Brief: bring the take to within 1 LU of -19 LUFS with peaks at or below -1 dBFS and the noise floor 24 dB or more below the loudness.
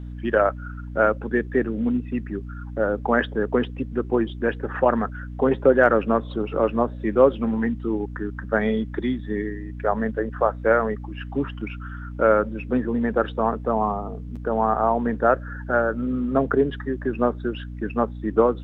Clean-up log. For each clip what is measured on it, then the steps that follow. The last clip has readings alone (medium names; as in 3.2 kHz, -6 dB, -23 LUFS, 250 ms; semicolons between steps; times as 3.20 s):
hum 60 Hz; highest harmonic 300 Hz; hum level -32 dBFS; loudness -23.5 LUFS; peak level -3.5 dBFS; loudness target -19.0 LUFS
-> de-hum 60 Hz, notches 5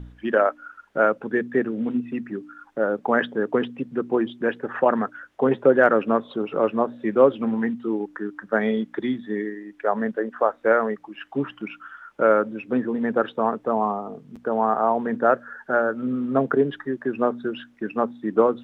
hum not found; loudness -23.5 LUFS; peak level -3.5 dBFS; loudness target -19.0 LUFS
-> trim +4.5 dB; peak limiter -1 dBFS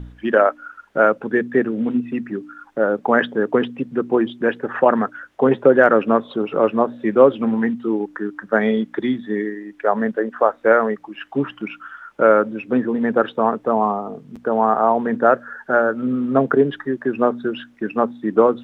loudness -19.0 LUFS; peak level -1.0 dBFS; noise floor -50 dBFS